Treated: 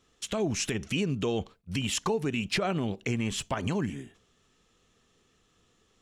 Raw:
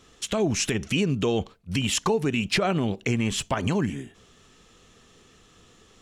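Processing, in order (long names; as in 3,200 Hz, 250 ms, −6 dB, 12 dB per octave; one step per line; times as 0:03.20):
noise gate −49 dBFS, range −7 dB
level −5 dB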